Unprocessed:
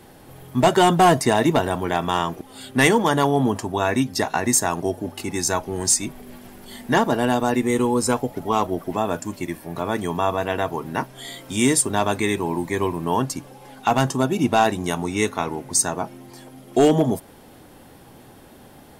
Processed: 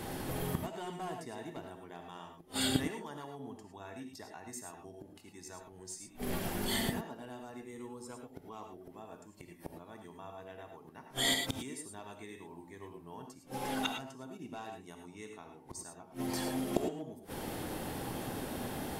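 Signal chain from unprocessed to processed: inverted gate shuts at -24 dBFS, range -33 dB; gated-style reverb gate 130 ms rising, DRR 4 dB; trim +5.5 dB

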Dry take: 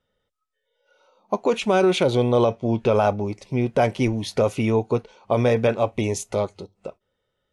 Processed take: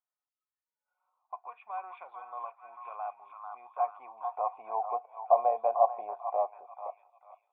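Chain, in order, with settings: cascade formant filter a; repeats whose band climbs or falls 443 ms, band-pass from 1.2 kHz, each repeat 0.7 oct, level -5 dB; high-pass sweep 1.7 kHz -> 650 Hz, 3.15–5.07 s; trim +1.5 dB

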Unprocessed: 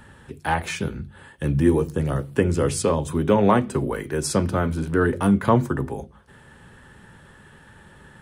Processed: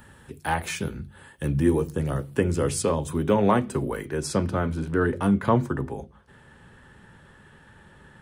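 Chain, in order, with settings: treble shelf 9.4 kHz +10.5 dB, from 1.47 s +4.5 dB, from 4.05 s -7.5 dB; trim -3 dB

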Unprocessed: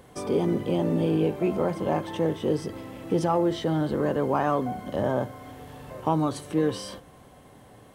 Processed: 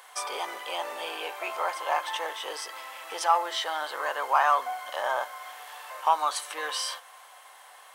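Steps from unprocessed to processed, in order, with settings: high-pass 870 Hz 24 dB/octave; trim +8 dB

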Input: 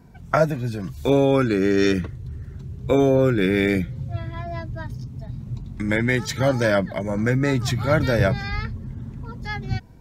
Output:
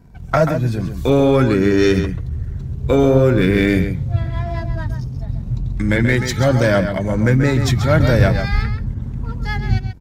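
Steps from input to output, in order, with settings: waveshaping leveller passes 1; bass shelf 87 Hz +11.5 dB; echo from a far wall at 23 m, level -8 dB

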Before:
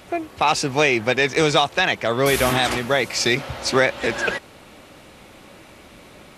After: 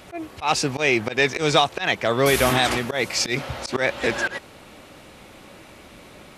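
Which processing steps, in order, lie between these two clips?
slow attack 114 ms

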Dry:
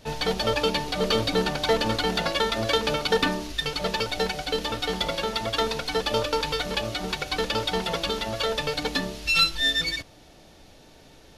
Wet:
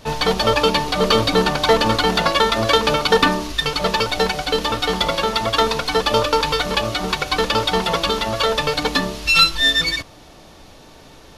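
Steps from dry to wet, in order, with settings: peaking EQ 1.1 kHz +7.5 dB 0.43 oct; trim +7 dB

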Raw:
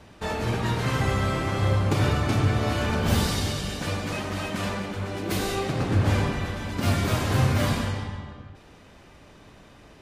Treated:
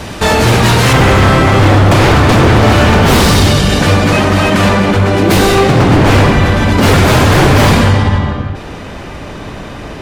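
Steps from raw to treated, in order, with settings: wavefolder -22 dBFS; treble shelf 3.6 kHz +5 dB, from 0.93 s -6 dB; loudness maximiser +26 dB; trim -1 dB

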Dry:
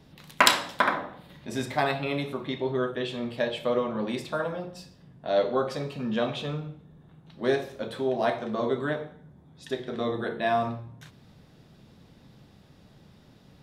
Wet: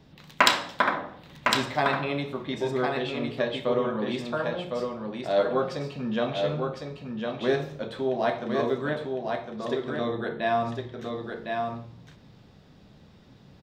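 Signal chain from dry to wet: peaking EQ 11 kHz -15 dB 0.53 oct; on a send: delay 1057 ms -4.5 dB

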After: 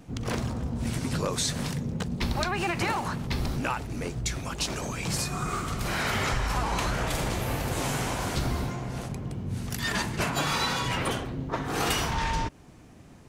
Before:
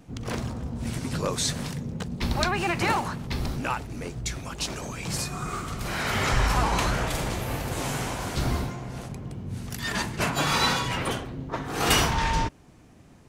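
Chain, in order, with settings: compression 6:1, threshold -26 dBFS, peak gain reduction 9.5 dB; trim +2 dB

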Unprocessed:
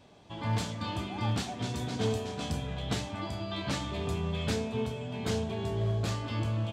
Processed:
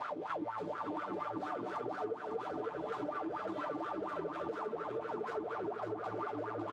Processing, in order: in parallel at -8 dB: fuzz box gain 55 dB, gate -59 dBFS; on the sum: flange 2 Hz, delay 8.8 ms, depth 4.4 ms, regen -38%; wah-wah 4.2 Hz 320–1400 Hz, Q 11; comb 6.7 ms, depth 41%; on a send: feedback delay 553 ms, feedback 41%, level -6 dB; on the sum: compression 6:1, threshold -51 dBFS, peak gain reduction 22 dB; trim +13.5 dB

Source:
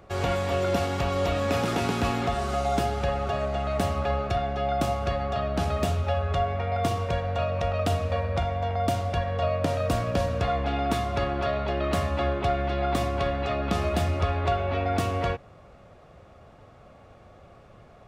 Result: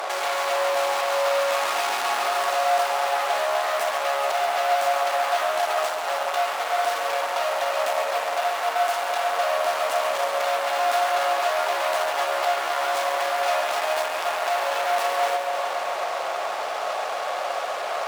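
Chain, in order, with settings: compression 6:1, threshold -37 dBFS, peak gain reduction 16 dB; fuzz box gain 54 dB, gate -58 dBFS; ladder high-pass 580 Hz, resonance 35%; spring tank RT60 4 s, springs 59 ms, chirp 45 ms, DRR 9 dB; bit-crushed delay 138 ms, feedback 80%, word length 8-bit, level -9 dB; trim -3 dB

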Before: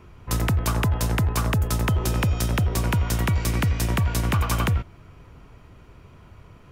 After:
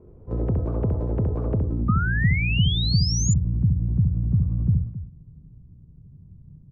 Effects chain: loudspeakers at several distances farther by 23 m -4 dB, 92 m -12 dB; low-pass sweep 470 Hz -> 160 Hz, 1.53–2.04 s; painted sound rise, 1.88–3.34 s, 1.2–7.2 kHz -25 dBFS; trim -3.5 dB

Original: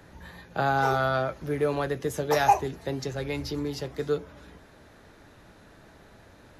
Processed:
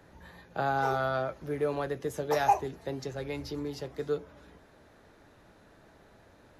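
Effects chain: peaking EQ 580 Hz +3.5 dB 2.4 oct; trim -7 dB

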